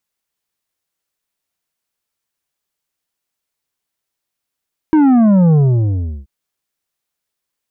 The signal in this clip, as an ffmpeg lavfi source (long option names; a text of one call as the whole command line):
ffmpeg -f lavfi -i "aevalsrc='0.398*clip((1.33-t)/0.73,0,1)*tanh(2.51*sin(2*PI*320*1.33/log(65/320)*(exp(log(65/320)*t/1.33)-1)))/tanh(2.51)':duration=1.33:sample_rate=44100" out.wav